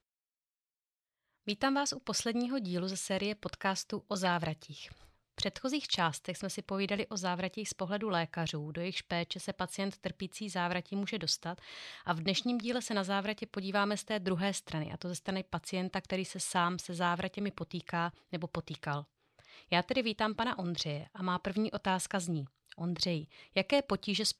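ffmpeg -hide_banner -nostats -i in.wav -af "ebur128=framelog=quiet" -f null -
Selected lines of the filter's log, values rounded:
Integrated loudness:
  I:         -35.1 LUFS
  Threshold: -45.3 LUFS
Loudness range:
  LRA:         2.3 LU
  Threshold: -55.5 LUFS
  LRA low:   -36.6 LUFS
  LRA high:  -34.3 LUFS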